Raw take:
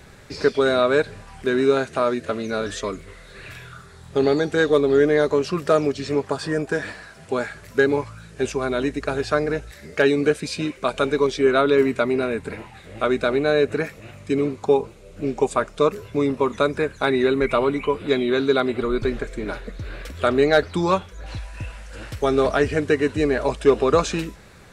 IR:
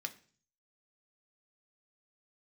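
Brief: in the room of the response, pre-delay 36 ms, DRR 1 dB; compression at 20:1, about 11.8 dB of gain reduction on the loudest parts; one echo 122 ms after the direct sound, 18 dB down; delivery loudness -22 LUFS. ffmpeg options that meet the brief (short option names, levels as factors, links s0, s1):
-filter_complex "[0:a]acompressor=threshold=0.0794:ratio=20,aecho=1:1:122:0.126,asplit=2[s0][s1];[1:a]atrim=start_sample=2205,adelay=36[s2];[s1][s2]afir=irnorm=-1:irlink=0,volume=0.944[s3];[s0][s3]amix=inputs=2:normalize=0,volume=1.78"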